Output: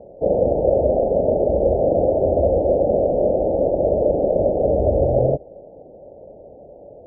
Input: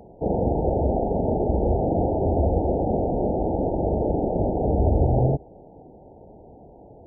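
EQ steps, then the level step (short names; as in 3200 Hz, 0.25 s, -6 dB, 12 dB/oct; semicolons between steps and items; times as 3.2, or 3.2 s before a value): synth low-pass 570 Hz, resonance Q 6.5; -3.0 dB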